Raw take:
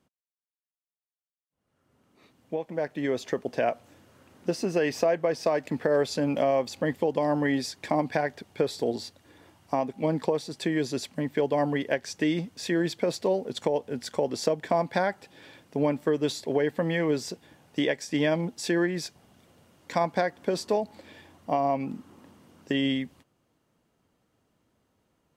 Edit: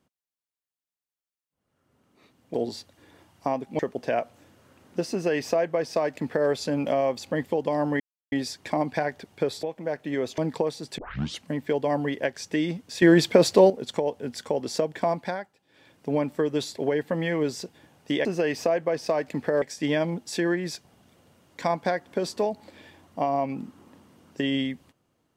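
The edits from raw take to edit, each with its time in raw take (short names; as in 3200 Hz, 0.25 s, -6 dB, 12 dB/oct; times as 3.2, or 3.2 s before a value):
2.54–3.29 swap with 8.81–10.06
4.62–5.99 copy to 17.93
7.5 insert silence 0.32 s
10.66 tape start 0.45 s
12.7–13.38 gain +9.5 dB
14.78–15.77 dip -16 dB, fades 0.42 s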